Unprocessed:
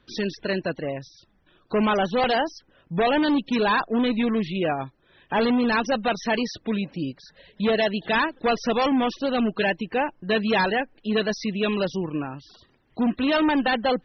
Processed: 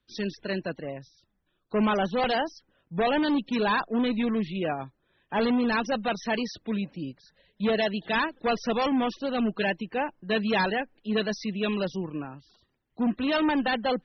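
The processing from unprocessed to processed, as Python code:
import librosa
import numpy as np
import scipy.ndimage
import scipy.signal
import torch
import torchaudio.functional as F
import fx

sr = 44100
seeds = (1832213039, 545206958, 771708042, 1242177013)

y = fx.peak_eq(x, sr, hz=200.0, db=2.5, octaves=0.36)
y = fx.band_widen(y, sr, depth_pct=40)
y = y * librosa.db_to_amplitude(-4.0)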